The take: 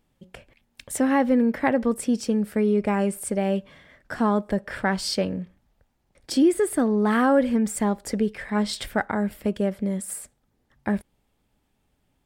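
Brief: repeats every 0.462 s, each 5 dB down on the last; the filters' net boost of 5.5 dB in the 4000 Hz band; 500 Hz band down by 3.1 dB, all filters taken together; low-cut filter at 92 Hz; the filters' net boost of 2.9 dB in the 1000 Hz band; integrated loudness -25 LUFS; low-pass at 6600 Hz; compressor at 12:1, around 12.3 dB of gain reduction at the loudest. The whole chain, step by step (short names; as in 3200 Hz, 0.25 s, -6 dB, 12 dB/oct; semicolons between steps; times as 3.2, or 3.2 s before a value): HPF 92 Hz; LPF 6600 Hz; bell 500 Hz -5 dB; bell 1000 Hz +5 dB; bell 4000 Hz +7.5 dB; compressor 12:1, threshold -28 dBFS; feedback echo 0.462 s, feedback 56%, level -5 dB; gain +7 dB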